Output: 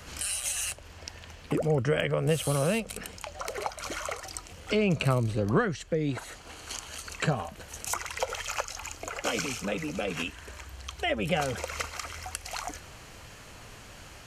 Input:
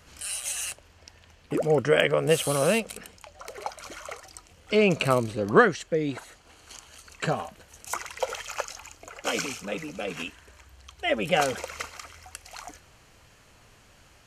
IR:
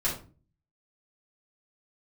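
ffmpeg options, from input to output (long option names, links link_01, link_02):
-filter_complex "[0:a]acrossover=split=130[link_01][link_02];[link_02]acompressor=threshold=-41dB:ratio=2.5[link_03];[link_01][link_03]amix=inputs=2:normalize=0,volume=8.5dB"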